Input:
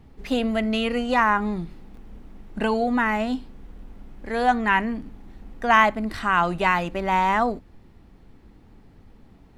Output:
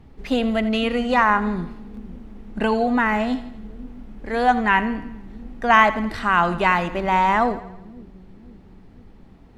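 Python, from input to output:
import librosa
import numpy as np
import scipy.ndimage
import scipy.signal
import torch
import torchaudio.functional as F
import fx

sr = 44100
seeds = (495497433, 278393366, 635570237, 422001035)

y = fx.high_shelf(x, sr, hz=7800.0, db=-7.0)
y = fx.echo_split(y, sr, split_hz=350.0, low_ms=510, high_ms=83, feedback_pct=52, wet_db=-15.0)
y = y * 10.0 ** (2.5 / 20.0)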